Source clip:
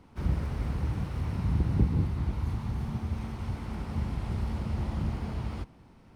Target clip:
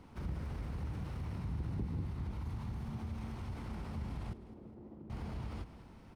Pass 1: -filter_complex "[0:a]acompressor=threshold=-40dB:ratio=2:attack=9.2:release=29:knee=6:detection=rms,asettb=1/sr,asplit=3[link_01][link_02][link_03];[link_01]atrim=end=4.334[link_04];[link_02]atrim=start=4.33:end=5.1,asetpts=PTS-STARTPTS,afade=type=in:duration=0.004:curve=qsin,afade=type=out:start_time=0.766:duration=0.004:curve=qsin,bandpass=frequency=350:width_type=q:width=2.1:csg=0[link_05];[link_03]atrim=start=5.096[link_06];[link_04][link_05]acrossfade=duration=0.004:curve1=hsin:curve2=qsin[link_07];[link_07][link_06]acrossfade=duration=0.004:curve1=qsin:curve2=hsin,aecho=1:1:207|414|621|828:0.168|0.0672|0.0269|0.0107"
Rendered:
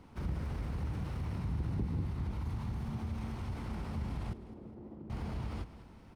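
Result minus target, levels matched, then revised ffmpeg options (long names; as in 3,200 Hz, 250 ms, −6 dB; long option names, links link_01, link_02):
downward compressor: peak gain reduction −3 dB
-filter_complex "[0:a]acompressor=threshold=-46.5dB:ratio=2:attack=9.2:release=29:knee=6:detection=rms,asettb=1/sr,asplit=3[link_01][link_02][link_03];[link_01]atrim=end=4.334[link_04];[link_02]atrim=start=4.33:end=5.1,asetpts=PTS-STARTPTS,afade=type=in:duration=0.004:curve=qsin,afade=type=out:start_time=0.766:duration=0.004:curve=qsin,bandpass=frequency=350:width_type=q:width=2.1:csg=0[link_05];[link_03]atrim=start=5.096[link_06];[link_04][link_05]acrossfade=duration=0.004:curve1=hsin:curve2=qsin[link_07];[link_07][link_06]acrossfade=duration=0.004:curve1=qsin:curve2=hsin,aecho=1:1:207|414|621|828:0.168|0.0672|0.0269|0.0107"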